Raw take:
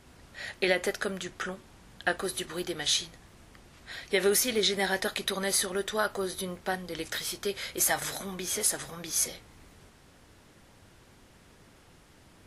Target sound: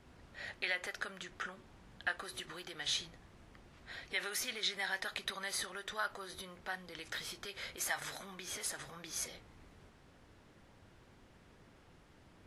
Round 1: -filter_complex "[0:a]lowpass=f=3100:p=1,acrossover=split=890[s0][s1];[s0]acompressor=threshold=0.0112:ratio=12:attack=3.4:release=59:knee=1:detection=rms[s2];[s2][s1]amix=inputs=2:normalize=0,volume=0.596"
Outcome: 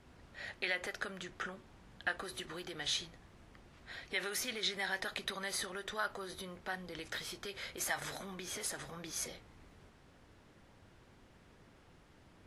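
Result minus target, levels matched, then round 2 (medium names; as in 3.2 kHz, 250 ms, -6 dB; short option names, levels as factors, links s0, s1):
compression: peak gain reduction -6 dB
-filter_complex "[0:a]lowpass=f=3100:p=1,acrossover=split=890[s0][s1];[s0]acompressor=threshold=0.00531:ratio=12:attack=3.4:release=59:knee=1:detection=rms[s2];[s2][s1]amix=inputs=2:normalize=0,volume=0.596"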